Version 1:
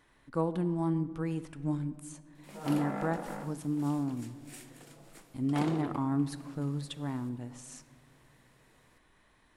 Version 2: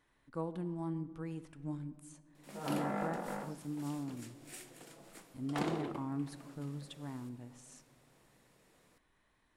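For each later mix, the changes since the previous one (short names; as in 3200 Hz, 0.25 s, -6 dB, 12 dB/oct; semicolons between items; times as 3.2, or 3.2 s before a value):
speech -8.5 dB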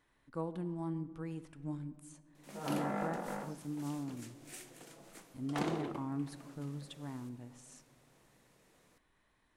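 background: remove notch 6200 Hz, Q 16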